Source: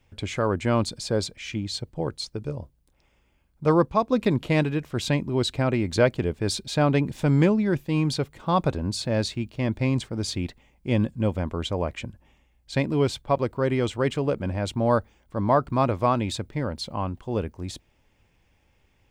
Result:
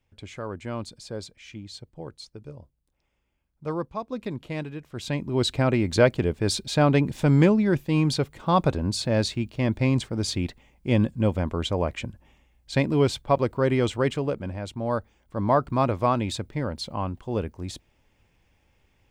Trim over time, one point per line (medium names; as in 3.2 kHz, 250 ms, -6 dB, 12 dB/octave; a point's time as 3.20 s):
4.84 s -10 dB
5.45 s +1.5 dB
13.94 s +1.5 dB
14.72 s -7 dB
15.46 s -0.5 dB